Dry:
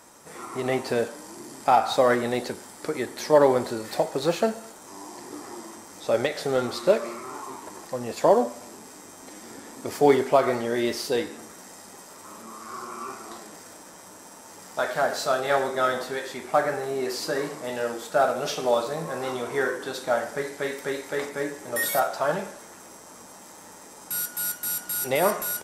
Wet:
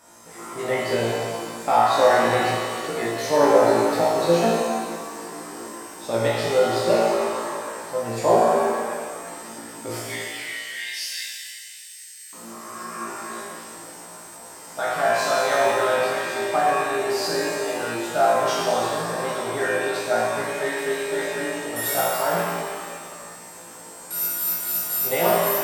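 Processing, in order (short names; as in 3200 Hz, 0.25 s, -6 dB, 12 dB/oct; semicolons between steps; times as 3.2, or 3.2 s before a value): 9.99–12.33 steep high-pass 1700 Hz 72 dB/oct; flutter echo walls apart 3 m, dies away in 0.43 s; shimmer reverb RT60 1.9 s, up +7 st, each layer -8 dB, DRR -2.5 dB; gain -4 dB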